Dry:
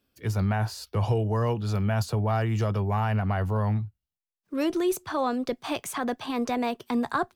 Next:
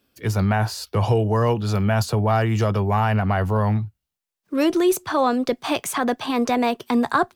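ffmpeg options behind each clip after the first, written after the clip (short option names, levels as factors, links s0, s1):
-af "lowshelf=f=99:g=-6.5,volume=2.37"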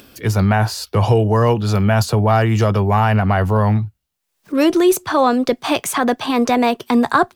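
-af "acompressor=mode=upward:threshold=0.0141:ratio=2.5,volume=1.78"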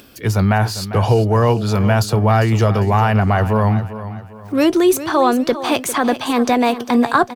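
-af "aecho=1:1:400|800|1200|1600:0.224|0.0828|0.0306|0.0113"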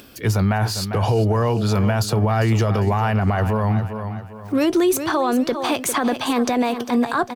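-af "alimiter=limit=0.282:level=0:latency=1:release=64"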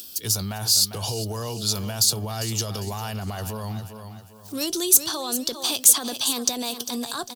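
-af "aexciter=amount=10.4:drive=5.6:freq=3200,volume=0.251"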